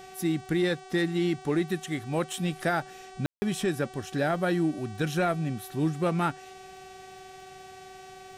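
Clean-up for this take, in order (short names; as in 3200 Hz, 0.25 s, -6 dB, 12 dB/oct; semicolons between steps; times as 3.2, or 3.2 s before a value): de-click; de-hum 381.5 Hz, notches 24; notch 740 Hz, Q 30; room tone fill 3.26–3.42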